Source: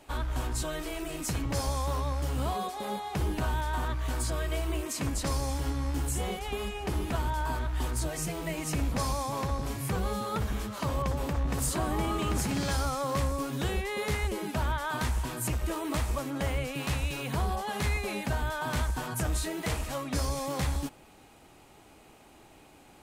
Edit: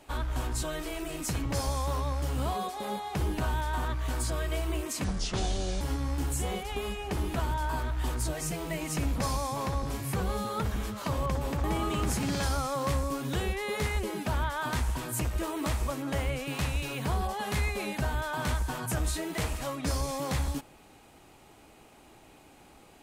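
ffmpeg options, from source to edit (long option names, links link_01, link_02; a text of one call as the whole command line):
ffmpeg -i in.wav -filter_complex "[0:a]asplit=4[link_01][link_02][link_03][link_04];[link_01]atrim=end=5.044[link_05];[link_02]atrim=start=5.04:end=5.57,asetpts=PTS-STARTPTS,asetrate=30429,aresample=44100[link_06];[link_03]atrim=start=5.566:end=11.402[link_07];[link_04]atrim=start=11.918[link_08];[link_05][link_06]acrossfade=duration=0.004:curve1=hsin:curve2=hsin[link_09];[link_09][link_07]acrossfade=duration=0.004:curve1=hsin:curve2=hsin[link_10];[link_10][link_08]acrossfade=duration=0.004:curve1=hsin:curve2=hsin" out.wav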